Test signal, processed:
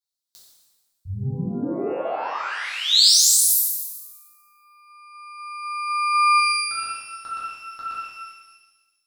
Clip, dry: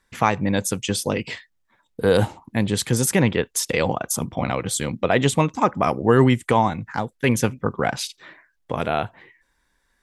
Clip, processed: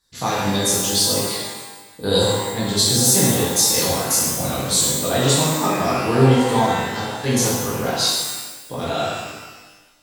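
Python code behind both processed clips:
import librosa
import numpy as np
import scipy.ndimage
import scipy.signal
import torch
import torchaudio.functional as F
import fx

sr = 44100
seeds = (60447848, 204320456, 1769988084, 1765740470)

y = fx.high_shelf_res(x, sr, hz=3200.0, db=8.0, q=3.0)
y = fx.rev_shimmer(y, sr, seeds[0], rt60_s=1.2, semitones=12, shimmer_db=-8, drr_db=-8.5)
y = F.gain(torch.from_numpy(y), -9.0).numpy()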